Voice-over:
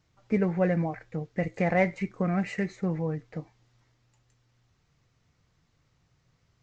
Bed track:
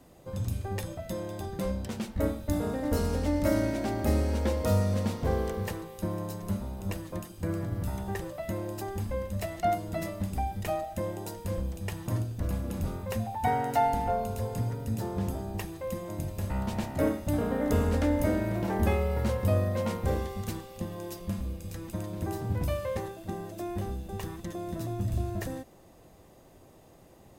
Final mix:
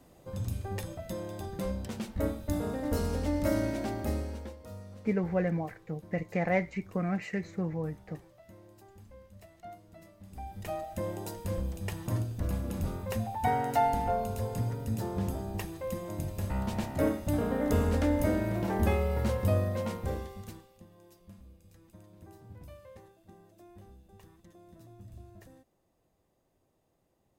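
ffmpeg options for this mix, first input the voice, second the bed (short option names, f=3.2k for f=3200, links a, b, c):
-filter_complex "[0:a]adelay=4750,volume=-4dB[a];[1:a]volume=16.5dB,afade=t=out:st=3.81:d=0.76:silence=0.133352,afade=t=in:st=10.22:d=0.9:silence=0.112202,afade=t=out:st=19.47:d=1.36:silence=0.125893[b];[a][b]amix=inputs=2:normalize=0"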